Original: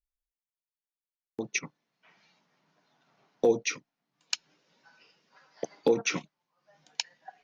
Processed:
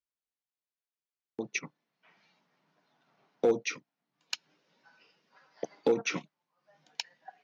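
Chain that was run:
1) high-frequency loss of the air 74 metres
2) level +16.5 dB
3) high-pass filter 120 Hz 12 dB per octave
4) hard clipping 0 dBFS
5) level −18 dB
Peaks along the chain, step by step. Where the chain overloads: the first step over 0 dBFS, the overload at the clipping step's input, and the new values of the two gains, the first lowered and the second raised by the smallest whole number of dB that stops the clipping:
−13.5, +3.0, +3.0, 0.0, −18.0 dBFS
step 2, 3.0 dB
step 2 +13.5 dB, step 5 −15 dB

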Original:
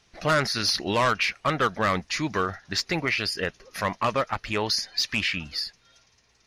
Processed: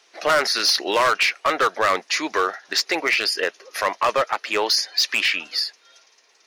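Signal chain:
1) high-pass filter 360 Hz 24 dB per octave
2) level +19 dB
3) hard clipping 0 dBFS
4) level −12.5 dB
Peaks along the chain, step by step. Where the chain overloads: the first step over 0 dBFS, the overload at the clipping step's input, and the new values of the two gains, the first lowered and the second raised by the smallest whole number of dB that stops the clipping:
−10.5, +8.5, 0.0, −12.5 dBFS
step 2, 8.5 dB
step 2 +10 dB, step 4 −3.5 dB

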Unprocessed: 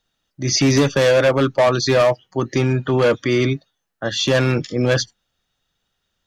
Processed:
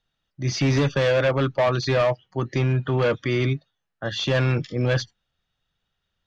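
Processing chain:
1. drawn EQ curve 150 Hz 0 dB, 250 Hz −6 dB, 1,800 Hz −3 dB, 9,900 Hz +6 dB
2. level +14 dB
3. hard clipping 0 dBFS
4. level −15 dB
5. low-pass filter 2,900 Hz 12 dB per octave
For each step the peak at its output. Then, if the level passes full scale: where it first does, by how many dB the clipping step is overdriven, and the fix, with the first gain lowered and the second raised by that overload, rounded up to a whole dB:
−5.0, +9.0, 0.0, −15.0, −14.5 dBFS
step 2, 9.0 dB
step 2 +5 dB, step 4 −6 dB

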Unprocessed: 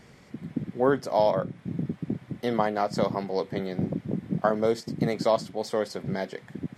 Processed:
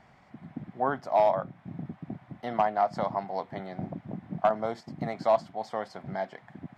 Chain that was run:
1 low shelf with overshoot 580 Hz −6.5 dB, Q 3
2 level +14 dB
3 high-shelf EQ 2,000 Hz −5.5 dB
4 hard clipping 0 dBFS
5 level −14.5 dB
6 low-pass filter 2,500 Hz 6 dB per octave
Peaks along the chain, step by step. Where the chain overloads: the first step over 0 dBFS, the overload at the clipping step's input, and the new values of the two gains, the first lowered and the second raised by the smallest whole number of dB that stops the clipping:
−8.5, +5.5, +4.5, 0.0, −14.5, −14.5 dBFS
step 2, 4.5 dB
step 2 +9 dB, step 5 −9.5 dB

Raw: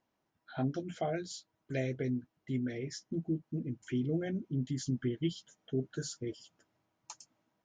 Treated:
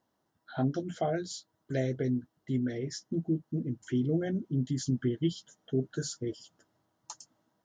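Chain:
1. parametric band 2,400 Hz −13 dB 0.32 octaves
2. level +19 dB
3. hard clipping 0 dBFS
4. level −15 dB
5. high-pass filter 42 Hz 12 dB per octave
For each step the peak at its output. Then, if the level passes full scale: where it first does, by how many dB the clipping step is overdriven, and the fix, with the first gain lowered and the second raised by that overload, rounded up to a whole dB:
−21.0, −2.0, −2.0, −17.0, −17.5 dBFS
no step passes full scale

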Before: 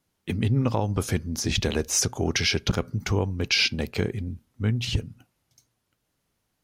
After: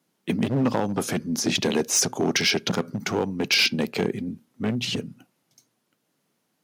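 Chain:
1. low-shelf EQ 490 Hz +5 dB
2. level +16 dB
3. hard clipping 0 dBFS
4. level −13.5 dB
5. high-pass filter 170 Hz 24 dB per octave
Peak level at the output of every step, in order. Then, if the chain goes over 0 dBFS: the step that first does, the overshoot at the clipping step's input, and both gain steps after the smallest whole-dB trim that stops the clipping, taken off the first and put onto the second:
−7.0, +9.0, 0.0, −13.5, −10.0 dBFS
step 2, 9.0 dB
step 2 +7 dB, step 4 −4.5 dB

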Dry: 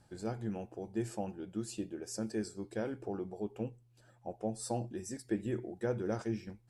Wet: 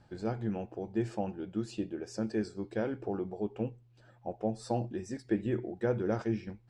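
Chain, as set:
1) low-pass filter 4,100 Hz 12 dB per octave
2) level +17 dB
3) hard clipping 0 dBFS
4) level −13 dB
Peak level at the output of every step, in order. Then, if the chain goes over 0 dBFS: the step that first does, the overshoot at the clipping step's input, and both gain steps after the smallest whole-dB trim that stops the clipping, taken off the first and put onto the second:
−22.5, −5.5, −5.5, −18.5 dBFS
no step passes full scale

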